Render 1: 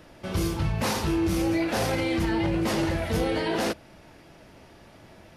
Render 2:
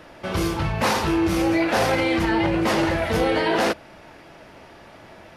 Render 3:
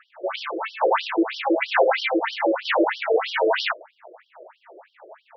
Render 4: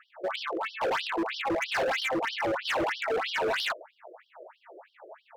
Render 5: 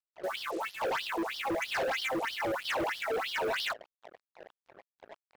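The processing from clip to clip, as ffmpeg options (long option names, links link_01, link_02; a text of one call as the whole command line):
ffmpeg -i in.wav -af "equalizer=frequency=1200:width=0.3:gain=8.5" out.wav
ffmpeg -i in.wav -af "adynamicsmooth=sensitivity=4:basefreq=1100,afftfilt=real='re*between(b*sr/1024,440*pow(4200/440,0.5+0.5*sin(2*PI*3.1*pts/sr))/1.41,440*pow(4200/440,0.5+0.5*sin(2*PI*3.1*pts/sr))*1.41)':imag='im*between(b*sr/1024,440*pow(4200/440,0.5+0.5*sin(2*PI*3.1*pts/sr))/1.41,440*pow(4200/440,0.5+0.5*sin(2*PI*3.1*pts/sr))*1.41)':win_size=1024:overlap=0.75,volume=7.5dB" out.wav
ffmpeg -i in.wav -af "asoftclip=type=hard:threshold=-22.5dB,volume=-3dB" out.wav
ffmpeg -i in.wav -af "acrusher=bits=6:mix=0:aa=0.5,volume=-3dB" out.wav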